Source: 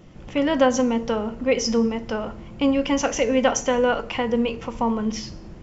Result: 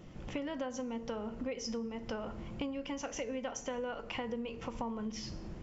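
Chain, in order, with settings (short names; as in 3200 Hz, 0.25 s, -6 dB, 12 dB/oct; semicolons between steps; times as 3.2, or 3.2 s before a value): compressor 10:1, threshold -31 dBFS, peak gain reduction 18.5 dB; gain -4.5 dB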